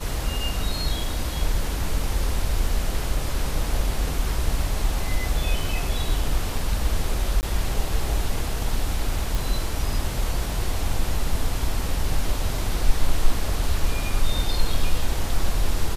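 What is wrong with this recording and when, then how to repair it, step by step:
7.41–7.43 gap 19 ms
9.35 pop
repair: de-click; interpolate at 7.41, 19 ms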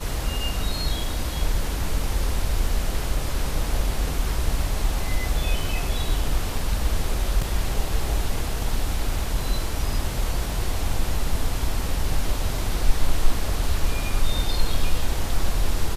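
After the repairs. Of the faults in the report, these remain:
none

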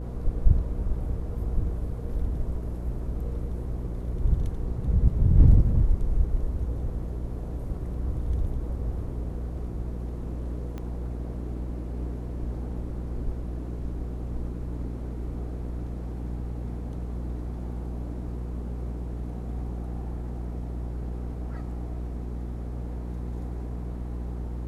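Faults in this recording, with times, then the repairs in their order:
hum 60 Hz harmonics 8 -33 dBFS
10.78 pop -24 dBFS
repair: de-click; de-hum 60 Hz, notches 8

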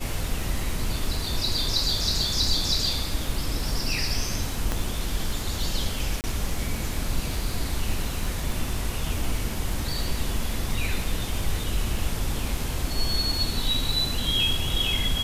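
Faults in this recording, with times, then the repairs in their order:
crackle 55/s -32 dBFS
4.72 pop -11 dBFS
6.21–6.24 gap 29 ms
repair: de-click; interpolate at 6.21, 29 ms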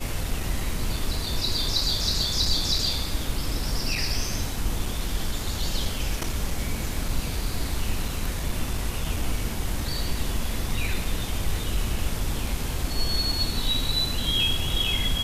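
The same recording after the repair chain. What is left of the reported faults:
4.72 pop

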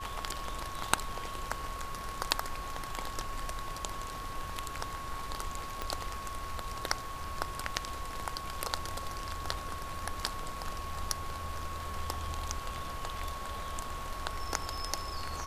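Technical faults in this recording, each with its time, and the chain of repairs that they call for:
tone 1100 Hz -41 dBFS
5.82 pop -19 dBFS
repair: de-click; notch 1100 Hz, Q 30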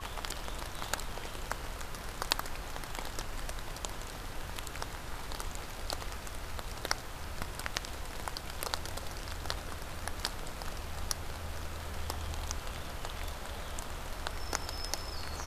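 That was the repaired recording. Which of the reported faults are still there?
5.82 pop

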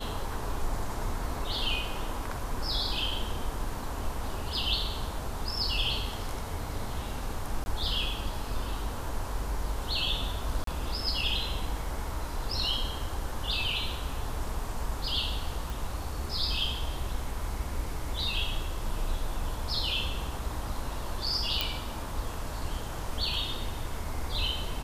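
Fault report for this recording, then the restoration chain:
7.64–7.66 gap 20 ms
10.64–10.67 gap 33 ms
15.7 pop
21.61 pop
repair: de-click; interpolate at 7.64, 20 ms; interpolate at 10.64, 33 ms

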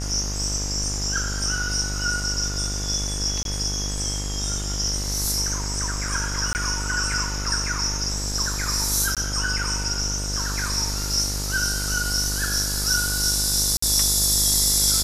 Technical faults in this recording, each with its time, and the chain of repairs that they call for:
buzz 50 Hz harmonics 38 -29 dBFS
3.43–3.45 gap 22 ms
6.53–6.55 gap 19 ms
9.15–9.17 gap 17 ms
13.77–13.82 gap 54 ms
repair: de-hum 50 Hz, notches 38; interpolate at 3.43, 22 ms; interpolate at 6.53, 19 ms; interpolate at 9.15, 17 ms; interpolate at 13.77, 54 ms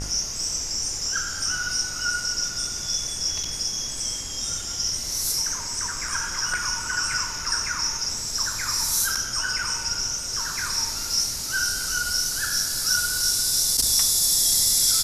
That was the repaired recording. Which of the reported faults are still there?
none

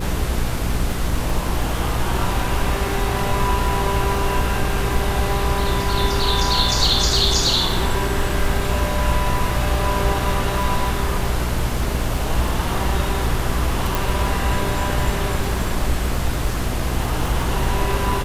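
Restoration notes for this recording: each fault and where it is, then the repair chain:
crackle 44/s -27 dBFS
hum 60 Hz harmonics 8 -25 dBFS
13.95 pop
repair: de-click; de-hum 60 Hz, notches 8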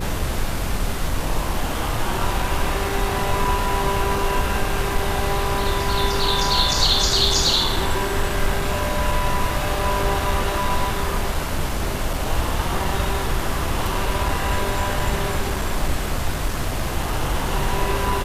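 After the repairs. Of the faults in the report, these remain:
13.95 pop

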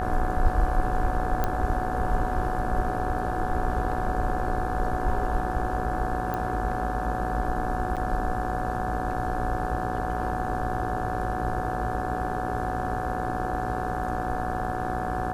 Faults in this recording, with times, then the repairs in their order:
buzz 60 Hz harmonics 29 -32 dBFS
tone 740 Hz -30 dBFS
1.44 pop -12 dBFS
6.34 pop -17 dBFS
7.96–7.97 gap 7.3 ms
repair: de-click; de-hum 60 Hz, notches 29; notch 740 Hz, Q 30; interpolate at 7.96, 7.3 ms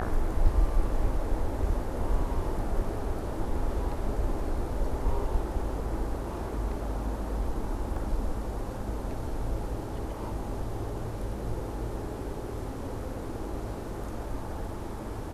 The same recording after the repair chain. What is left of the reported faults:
none

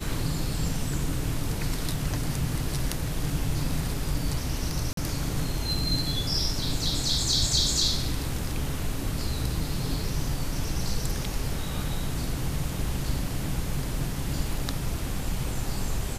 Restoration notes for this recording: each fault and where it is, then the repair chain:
4.93–4.97 gap 43 ms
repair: interpolate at 4.93, 43 ms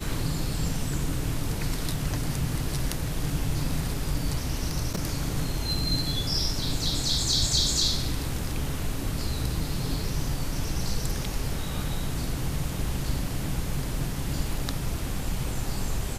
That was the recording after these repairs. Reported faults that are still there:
none

